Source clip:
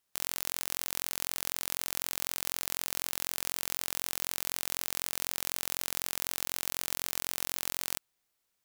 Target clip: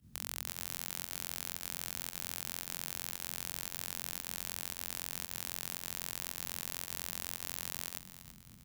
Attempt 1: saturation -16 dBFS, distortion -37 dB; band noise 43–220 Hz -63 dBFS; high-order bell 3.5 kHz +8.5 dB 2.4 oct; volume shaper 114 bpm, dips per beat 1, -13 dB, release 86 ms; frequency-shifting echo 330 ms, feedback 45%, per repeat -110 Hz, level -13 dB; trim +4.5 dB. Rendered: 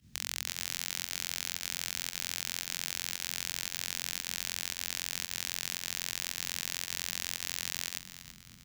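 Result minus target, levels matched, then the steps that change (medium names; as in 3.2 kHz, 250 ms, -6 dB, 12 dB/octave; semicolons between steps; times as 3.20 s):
4 kHz band +4.5 dB
remove: high-order bell 3.5 kHz +8.5 dB 2.4 oct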